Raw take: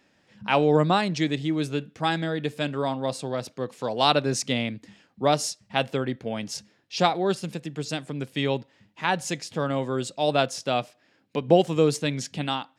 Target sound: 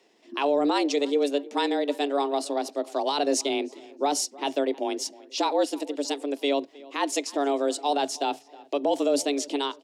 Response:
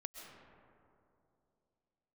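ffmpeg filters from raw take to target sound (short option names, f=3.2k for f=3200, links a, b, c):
-filter_complex "[0:a]equalizer=f=1.4k:t=o:w=1.2:g=-7.5,alimiter=limit=-17dB:level=0:latency=1:release=11,atempo=1.3,asplit=2[a][b];[b]adelay=314,lowpass=f=2.8k:p=1,volume=-21dB,asplit=2[c][d];[d]adelay=314,lowpass=f=2.8k:p=1,volume=0.38,asplit=2[e][f];[f]adelay=314,lowpass=f=2.8k:p=1,volume=0.38[g];[c][e][g]amix=inputs=3:normalize=0[h];[a][h]amix=inputs=2:normalize=0,afreqshift=140,volume=3dB"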